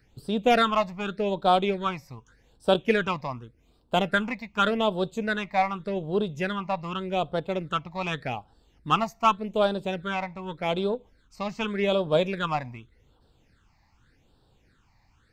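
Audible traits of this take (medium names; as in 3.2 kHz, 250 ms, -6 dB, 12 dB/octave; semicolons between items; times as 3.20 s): phasing stages 8, 0.85 Hz, lowest notch 420–2100 Hz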